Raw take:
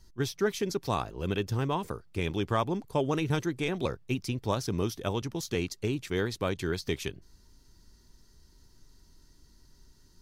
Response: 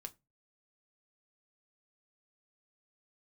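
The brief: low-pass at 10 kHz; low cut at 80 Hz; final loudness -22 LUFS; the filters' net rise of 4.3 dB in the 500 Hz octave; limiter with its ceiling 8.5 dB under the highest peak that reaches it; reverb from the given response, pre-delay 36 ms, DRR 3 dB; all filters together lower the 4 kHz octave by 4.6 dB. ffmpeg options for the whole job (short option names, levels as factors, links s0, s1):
-filter_complex "[0:a]highpass=80,lowpass=10000,equalizer=f=500:t=o:g=5.5,equalizer=f=4000:t=o:g=-6,alimiter=limit=0.1:level=0:latency=1,asplit=2[s0][s1];[1:a]atrim=start_sample=2205,adelay=36[s2];[s1][s2]afir=irnorm=-1:irlink=0,volume=1.26[s3];[s0][s3]amix=inputs=2:normalize=0,volume=2.66"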